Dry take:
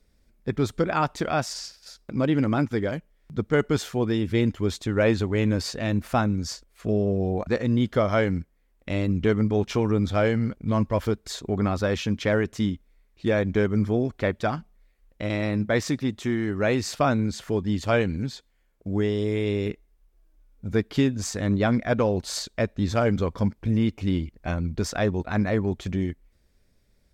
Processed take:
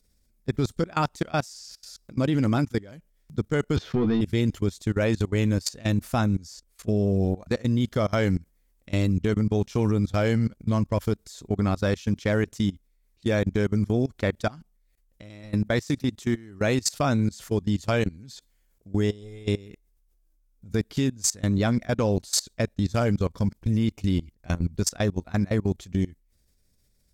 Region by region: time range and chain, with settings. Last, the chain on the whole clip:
3.76–4.21 s: waveshaping leveller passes 2 + distance through air 300 m + doubling 13 ms -4 dB
whole clip: tone controls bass +5 dB, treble +13 dB; level held to a coarse grid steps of 22 dB

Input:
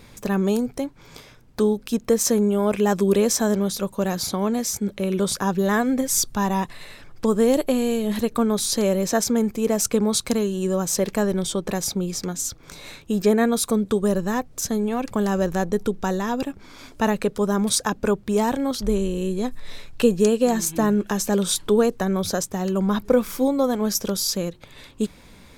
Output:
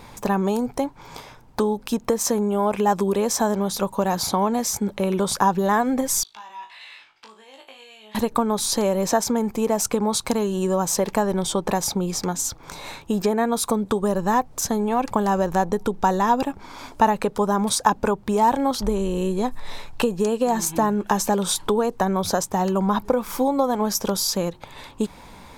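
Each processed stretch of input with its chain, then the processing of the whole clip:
6.23–8.15 s: compression 5:1, threshold -30 dBFS + band-pass filter 2.9 kHz, Q 2.1 + flutter echo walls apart 3.2 m, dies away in 0.26 s
whole clip: compression, threshold -21 dBFS; peaking EQ 890 Hz +12 dB 0.75 oct; trim +2 dB

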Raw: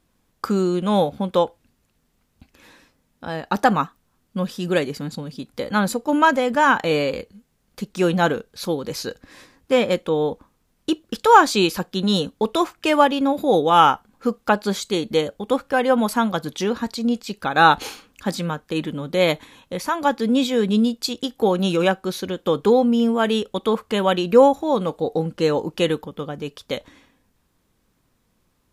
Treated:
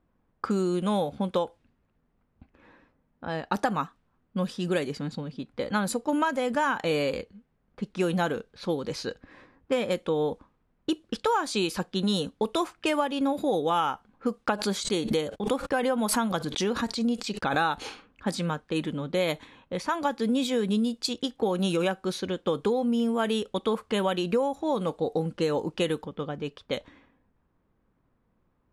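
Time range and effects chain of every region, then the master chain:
14.45–17.85 s: gate -44 dBFS, range -41 dB + swell ahead of each attack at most 100 dB/s
whole clip: compression 12:1, threshold -18 dBFS; level-controlled noise filter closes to 1.5 kHz, open at -19 dBFS; peaking EQ 9.5 kHz +7.5 dB 0.43 oct; trim -3.5 dB

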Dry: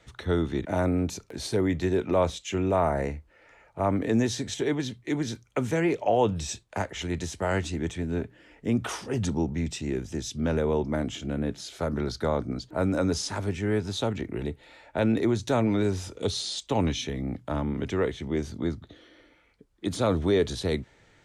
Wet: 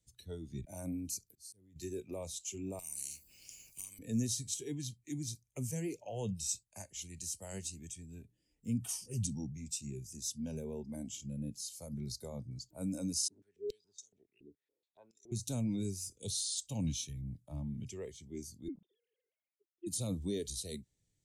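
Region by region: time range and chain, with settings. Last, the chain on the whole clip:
1.30–1.76 s: slow attack 534 ms + compression, threshold -37 dBFS
2.79–3.99 s: compression 12:1, threshold -30 dBFS + spectrum-flattening compressor 4:1
13.28–15.32 s: peaking EQ 410 Hz +13 dB 0.43 oct + step-sequenced band-pass 7.1 Hz 290–6000 Hz
18.68–19.87 s: formants replaced by sine waves + bass shelf 400 Hz +5.5 dB
whole clip: spectral noise reduction 13 dB; FFT filter 160 Hz 0 dB, 1.3 kHz -25 dB, 9.5 kHz +11 dB; trim -4.5 dB

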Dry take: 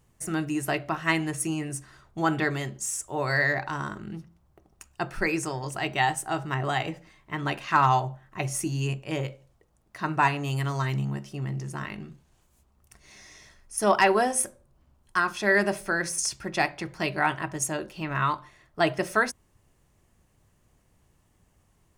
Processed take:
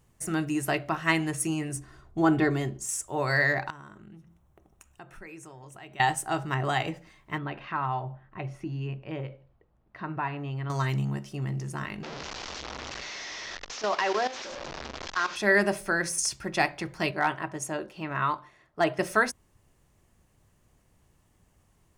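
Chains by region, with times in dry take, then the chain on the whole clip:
1.76–2.89 s: tilt shelf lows +5 dB, about 730 Hz + comb 2.8 ms, depth 36%
3.70–6.00 s: peaking EQ 4.7 kHz -14 dB 0.21 oct + compression 2.5:1, threshold -51 dBFS
7.38–10.70 s: compression 1.5:1, threshold -37 dBFS + distance through air 350 m
12.03–15.36 s: one-bit delta coder 32 kbps, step -23.5 dBFS + tone controls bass -15 dB, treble 0 dB + level held to a coarse grid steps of 13 dB
17.11–18.99 s: high-pass 540 Hz 6 dB/octave + tilt EQ -2.5 dB/octave + hard clipper -14 dBFS
whole clip: none

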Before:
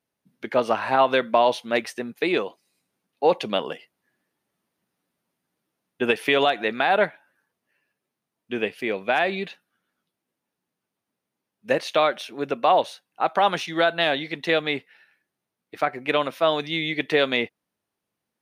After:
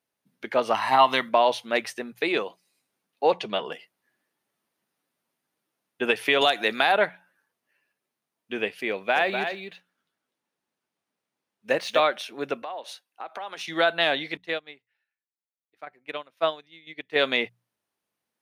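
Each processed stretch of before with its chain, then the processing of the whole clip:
0.74–1.29 s: treble shelf 4.2 kHz +9 dB + comb 1 ms, depth 63%
3.32–3.72 s: distance through air 53 m + comb of notches 270 Hz
6.41–6.92 s: tone controls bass +1 dB, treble +12 dB + three bands compressed up and down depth 40%
8.91–12.00 s: median filter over 3 samples + delay 248 ms -7 dB
12.62–13.68 s: compression, threshold -31 dBFS + high-pass 260 Hz + three bands expanded up and down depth 40%
14.37–17.16 s: tremolo saw down 2 Hz, depth 50% + upward expansion 2.5:1, over -32 dBFS
whole clip: bass shelf 370 Hz -7 dB; hum notches 60/120/180 Hz

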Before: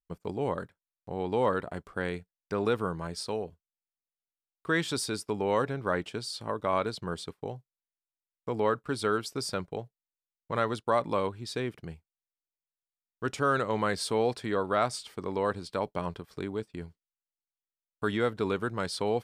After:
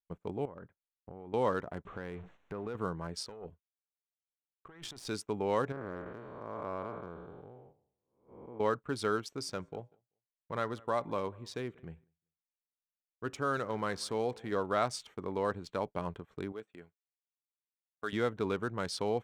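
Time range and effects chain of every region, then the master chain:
0.45–1.34 s: distance through air 370 m + compression 16:1, threshold -38 dBFS
1.85–2.75 s: jump at every zero crossing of -40.5 dBFS + compression 3:1, threshold -34 dBFS + distance through air 130 m
3.26–5.08 s: valve stage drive 22 dB, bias 0.8 + compressor with a negative ratio -44 dBFS
5.72–8.60 s: spectral blur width 428 ms + low-pass 2 kHz + peaking EQ 130 Hz -3.5 dB 2 oct
9.24–14.52 s: feedback comb 55 Hz, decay 0.42 s, harmonics odd, mix 30% + feedback delay 193 ms, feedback 20%, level -24 dB
16.52–18.13 s: high-pass 710 Hz 6 dB/octave + band-stop 930 Hz, Q 5.7
whole clip: local Wiener filter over 9 samples; gate -53 dBFS, range -10 dB; dynamic bell 5.9 kHz, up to +5 dB, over -57 dBFS, Q 2.8; trim -3.5 dB

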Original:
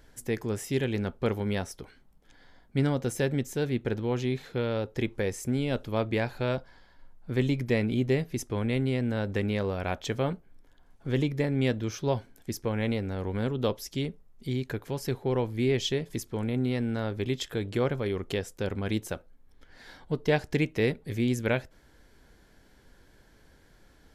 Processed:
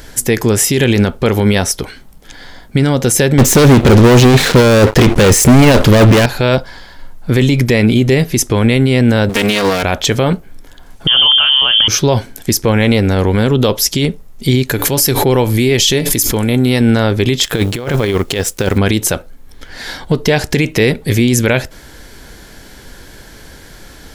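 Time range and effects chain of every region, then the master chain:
3.38–6.26 s: treble shelf 4 kHz -8 dB + waveshaping leveller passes 5
9.29–9.83 s: comb filter that takes the minimum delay 4.3 ms + tilt EQ +2 dB/octave
11.07–11.88 s: dynamic bell 2.3 kHz, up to +6 dB, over -47 dBFS, Q 0.84 + frequency inversion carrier 3.3 kHz + decay stretcher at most 42 dB/s
14.69–16.81 s: treble shelf 8.8 kHz +11 dB + feedback comb 290 Hz, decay 0.22 s, mix 50% + swell ahead of each attack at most 40 dB/s
17.43–18.78 s: companding laws mixed up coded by A + compressor with a negative ratio -33 dBFS, ratio -0.5
whole clip: treble shelf 2.7 kHz +7.5 dB; loudness maximiser +22 dB; trim -1 dB

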